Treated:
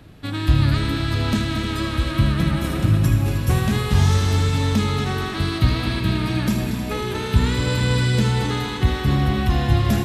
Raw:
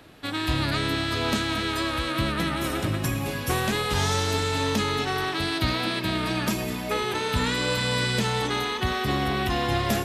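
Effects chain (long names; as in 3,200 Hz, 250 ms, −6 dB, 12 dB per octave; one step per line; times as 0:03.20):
bass and treble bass +14 dB, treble 0 dB
on a send: echo machine with several playback heads 78 ms, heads first and third, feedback 73%, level −11.5 dB
on the sum: level −2 dB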